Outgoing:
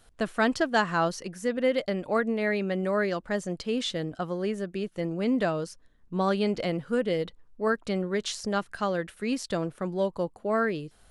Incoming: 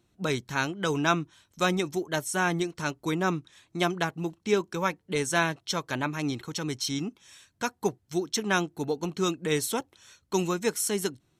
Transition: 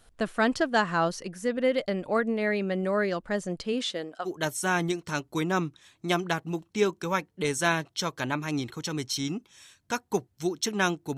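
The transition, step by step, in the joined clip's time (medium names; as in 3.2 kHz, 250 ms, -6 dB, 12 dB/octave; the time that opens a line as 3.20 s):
outgoing
3.72–4.30 s: high-pass 160 Hz -> 710 Hz
4.27 s: go over to incoming from 1.98 s, crossfade 0.06 s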